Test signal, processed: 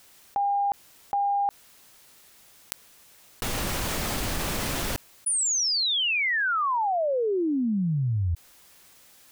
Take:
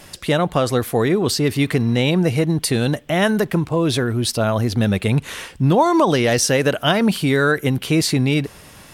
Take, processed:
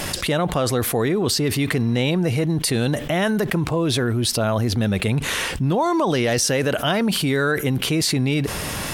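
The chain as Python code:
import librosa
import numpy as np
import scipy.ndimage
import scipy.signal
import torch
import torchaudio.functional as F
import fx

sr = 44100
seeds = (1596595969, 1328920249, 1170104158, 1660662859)

y = fx.env_flatten(x, sr, amount_pct=70)
y = y * librosa.db_to_amplitude(-6.5)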